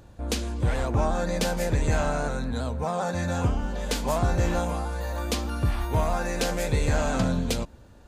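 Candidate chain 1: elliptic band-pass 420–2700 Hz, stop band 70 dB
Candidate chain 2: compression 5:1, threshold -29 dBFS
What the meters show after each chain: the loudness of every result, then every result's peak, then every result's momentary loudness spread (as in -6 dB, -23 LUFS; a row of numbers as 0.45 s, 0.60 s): -32.0 LUFS, -33.5 LUFS; -16.0 dBFS, -18.0 dBFS; 8 LU, 2 LU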